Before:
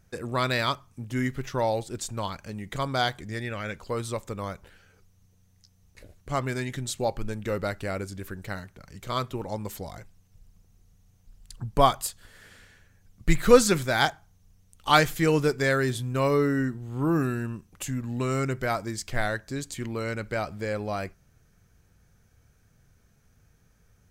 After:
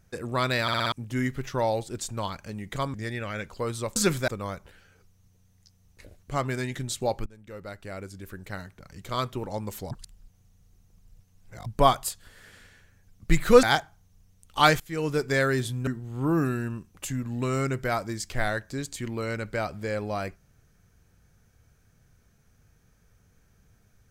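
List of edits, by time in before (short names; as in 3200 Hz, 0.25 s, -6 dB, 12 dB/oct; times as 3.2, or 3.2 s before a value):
0.62 stutter in place 0.06 s, 5 plays
2.94–3.24 cut
7.24–8.9 fade in, from -22.5 dB
9.89–11.64 reverse
13.61–13.93 move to 4.26
15.1–15.61 fade in, from -22 dB
16.17–16.65 cut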